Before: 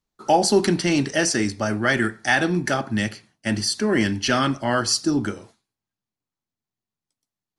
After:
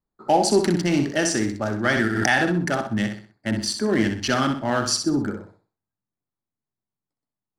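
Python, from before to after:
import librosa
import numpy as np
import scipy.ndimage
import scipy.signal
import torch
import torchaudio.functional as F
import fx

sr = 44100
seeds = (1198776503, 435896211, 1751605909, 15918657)

y = fx.wiener(x, sr, points=15)
y = fx.echo_feedback(y, sr, ms=63, feedback_pct=34, wet_db=-7.0)
y = fx.pre_swell(y, sr, db_per_s=33.0, at=(1.86, 2.62))
y = F.gain(torch.from_numpy(y), -1.0).numpy()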